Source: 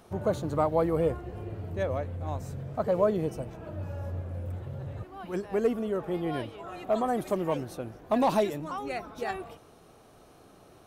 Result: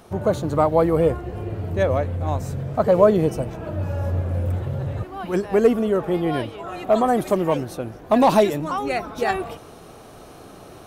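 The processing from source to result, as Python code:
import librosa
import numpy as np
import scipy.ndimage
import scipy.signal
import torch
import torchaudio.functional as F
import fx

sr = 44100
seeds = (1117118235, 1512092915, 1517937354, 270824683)

y = fx.rider(x, sr, range_db=4, speed_s=2.0)
y = y * librosa.db_to_amplitude(8.5)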